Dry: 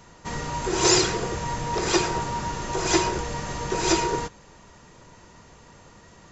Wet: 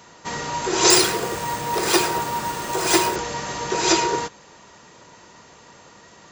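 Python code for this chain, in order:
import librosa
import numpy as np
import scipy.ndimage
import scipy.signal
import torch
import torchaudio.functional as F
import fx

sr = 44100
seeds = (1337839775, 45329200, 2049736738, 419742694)

y = fx.resample_bad(x, sr, factor=3, down='none', up='hold', at=(0.9, 3.16))
y = fx.highpass(y, sr, hz=300.0, slope=6)
y = fx.peak_eq(y, sr, hz=4000.0, db=2.0, octaves=0.77)
y = F.gain(torch.from_numpy(y), 4.5).numpy()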